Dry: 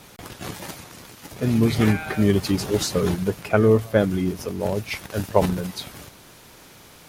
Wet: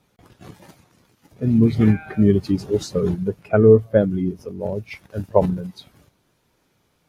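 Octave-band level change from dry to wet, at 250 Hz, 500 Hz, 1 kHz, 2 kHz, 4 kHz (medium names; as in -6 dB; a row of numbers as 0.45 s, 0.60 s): +3.0 dB, +3.5 dB, -2.5 dB, -6.0 dB, -9.5 dB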